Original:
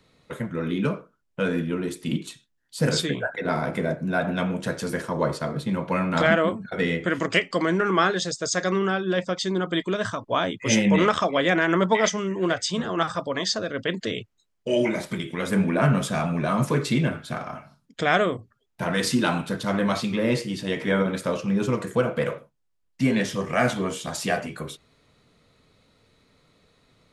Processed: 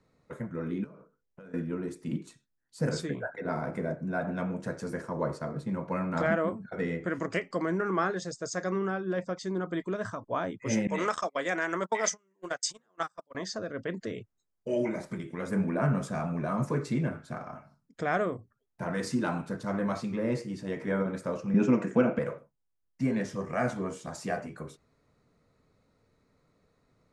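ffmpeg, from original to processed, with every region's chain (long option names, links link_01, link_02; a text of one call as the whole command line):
ffmpeg -i in.wav -filter_complex "[0:a]asettb=1/sr,asplit=3[link_01][link_02][link_03];[link_01]atrim=end=0.844[link_04];[link_02]atrim=start=0.84:end=1.54,asetpts=PTS-STARTPTS,afade=type=in:duration=0.004:curve=qsin,afade=type=out:start_time=0.696:duration=0.004:curve=qsin,acompressor=threshold=-37dB:ratio=20:attack=3.2:release=140:knee=1:detection=peak,bandreject=frequency=50:width_type=h:width=6,bandreject=frequency=100:width_type=h:width=6,bandreject=frequency=150:width_type=h:width=6,bandreject=frequency=200:width_type=h:width=6,bandreject=frequency=250:width_type=h:width=6,bandreject=frequency=300:width_type=h:width=6,bandreject=frequency=350:width_type=h:width=6,bandreject=frequency=400:width_type=h:width=6,bandreject=frequency=450:width_type=h:width=6,bandreject=frequency=500:width_type=h:width=6[link_05];[link_03]atrim=start=1.536[link_06];[link_04][link_05]acrossfade=duration=0.004:curve1=hsin:curve2=qsin[link_07];[link_07][link_06]acrossfade=duration=0.004:curve1=qsin:curve2=hsin,asettb=1/sr,asplit=3[link_08][link_09][link_10];[link_08]atrim=end=10.874[link_11];[link_09]atrim=start=10.87:end=13.35,asetpts=PTS-STARTPTS,afade=type=in:duration=0.004:curve=qsin,afade=type=out:start_time=2.476:duration=0.004:curve=qsin,aemphasis=mode=production:type=riaa,agate=range=-33dB:threshold=-26dB:ratio=16:release=100:detection=peak[link_12];[link_10]atrim=start=13.346[link_13];[link_11][link_12]acrossfade=duration=0.004:curve1=hsin:curve2=qsin[link_14];[link_14][link_13]acrossfade=duration=0.004:curve1=qsin:curve2=hsin,asettb=1/sr,asplit=3[link_15][link_16][link_17];[link_15]atrim=end=21.544[link_18];[link_16]atrim=start=21.54:end=22.19,asetpts=PTS-STARTPTS,afade=type=in:duration=0.004:curve=qsin,afade=type=out:start_time=0.646:duration=0.004:curve=qsin,acontrast=72,highpass=frequency=150:width=0.5412,highpass=frequency=150:width=1.3066,equalizer=frequency=250:width_type=q:width=4:gain=6,equalizer=frequency=460:width_type=q:width=4:gain=-4,equalizer=frequency=1100:width_type=q:width=4:gain=-6,equalizer=frequency=2600:width_type=q:width=4:gain=8,equalizer=frequency=4300:width_type=q:width=4:gain=-10,lowpass=frequency=6500:width=0.5412,lowpass=frequency=6500:width=1.3066[link_19];[link_17]atrim=start=22.186[link_20];[link_18][link_19]acrossfade=duration=0.004:curve1=hsin:curve2=qsin[link_21];[link_21][link_20]acrossfade=duration=0.004:curve1=qsin:curve2=hsin,lowpass=7300,equalizer=frequency=3300:width_type=o:width=0.97:gain=-14.5,volume=-6.5dB" out.wav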